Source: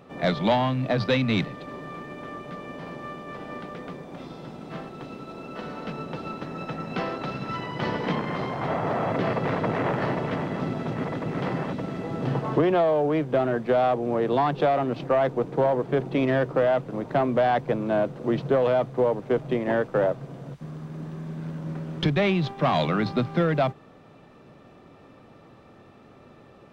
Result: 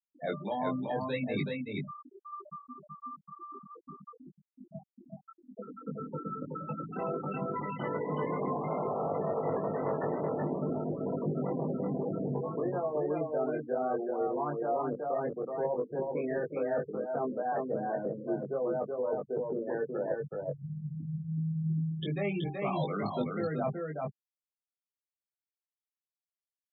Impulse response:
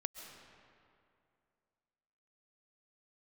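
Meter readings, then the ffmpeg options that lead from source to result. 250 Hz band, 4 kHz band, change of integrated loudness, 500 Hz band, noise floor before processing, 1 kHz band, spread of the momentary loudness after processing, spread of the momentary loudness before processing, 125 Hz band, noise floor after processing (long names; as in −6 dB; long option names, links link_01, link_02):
−8.0 dB, below −15 dB, −8.5 dB, −7.5 dB, −51 dBFS, −8.5 dB, 15 LU, 15 LU, −8.0 dB, below −85 dBFS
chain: -filter_complex "[0:a]highpass=frequency=170:poles=1,bandreject=frequency=60:width_type=h:width=6,bandreject=frequency=120:width_type=h:width=6,bandreject=frequency=180:width_type=h:width=6,bandreject=frequency=240:width_type=h:width=6,bandreject=frequency=300:width_type=h:width=6,afftfilt=real='re*gte(hypot(re,im),0.0891)':imag='im*gte(hypot(re,im),0.0891)':win_size=1024:overlap=0.75,adynamicequalizer=threshold=0.0112:dfrequency=450:dqfactor=4.1:tfrequency=450:tqfactor=4.1:attack=5:release=100:ratio=0.375:range=2.5:mode=boostabove:tftype=bell,areverse,acompressor=threshold=-32dB:ratio=12,areverse,asplit=2[link_01][link_02];[link_02]adelay=20,volume=-3dB[link_03];[link_01][link_03]amix=inputs=2:normalize=0,aecho=1:1:376:0.668"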